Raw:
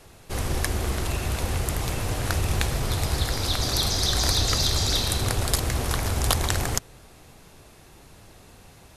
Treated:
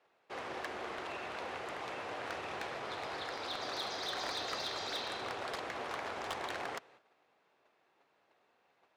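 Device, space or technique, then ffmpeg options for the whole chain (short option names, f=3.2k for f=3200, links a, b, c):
walkie-talkie: -af "highpass=500,lowpass=2.5k,asoftclip=type=hard:threshold=-26.5dB,agate=range=-11dB:threshold=-54dB:ratio=16:detection=peak,volume=-5.5dB"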